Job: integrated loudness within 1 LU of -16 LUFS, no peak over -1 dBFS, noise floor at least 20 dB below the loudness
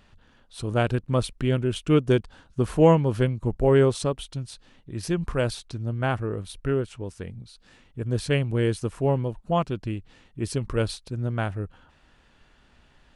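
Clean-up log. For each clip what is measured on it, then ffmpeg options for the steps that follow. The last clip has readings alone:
loudness -25.5 LUFS; peak -5.5 dBFS; loudness target -16.0 LUFS
-> -af "volume=9.5dB,alimiter=limit=-1dB:level=0:latency=1"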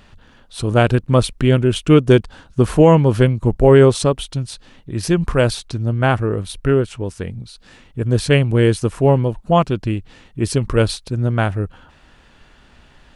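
loudness -16.5 LUFS; peak -1.0 dBFS; noise floor -50 dBFS

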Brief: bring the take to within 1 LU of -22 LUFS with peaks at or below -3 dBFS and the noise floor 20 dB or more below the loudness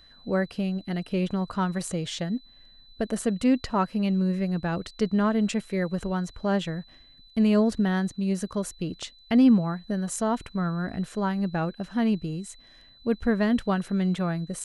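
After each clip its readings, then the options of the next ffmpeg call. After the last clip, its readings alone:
steady tone 4000 Hz; tone level -53 dBFS; loudness -26.5 LUFS; peak -10.0 dBFS; loudness target -22.0 LUFS
-> -af "bandreject=f=4k:w=30"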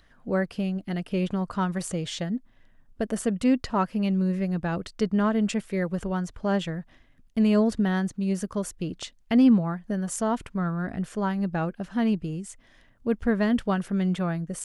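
steady tone none; loudness -26.5 LUFS; peak -10.0 dBFS; loudness target -22.0 LUFS
-> -af "volume=4.5dB"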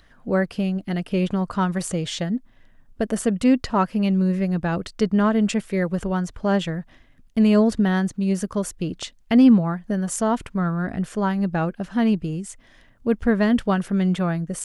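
loudness -22.0 LUFS; peak -5.5 dBFS; noise floor -53 dBFS

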